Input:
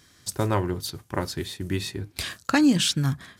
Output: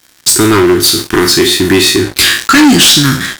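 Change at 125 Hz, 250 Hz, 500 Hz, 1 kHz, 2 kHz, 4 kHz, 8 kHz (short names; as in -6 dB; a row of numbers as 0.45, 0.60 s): +11.0, +16.0, +19.5, +17.0, +21.0, +22.0, +23.0 dB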